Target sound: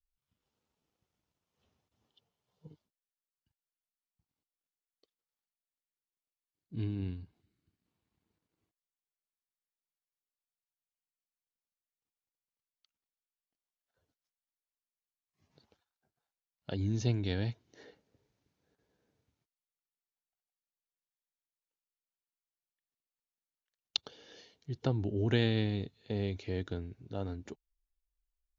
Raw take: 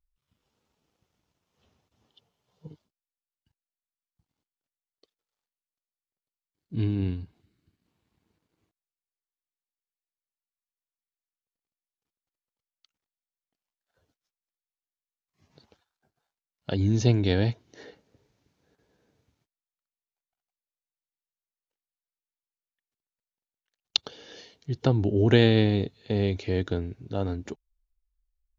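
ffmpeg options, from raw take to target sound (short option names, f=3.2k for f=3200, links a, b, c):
-af "adynamicequalizer=threshold=0.0158:dfrequency=510:dqfactor=0.79:tfrequency=510:tqfactor=0.79:attack=5:release=100:ratio=0.375:range=2.5:mode=cutabove:tftype=bell,volume=-8.5dB"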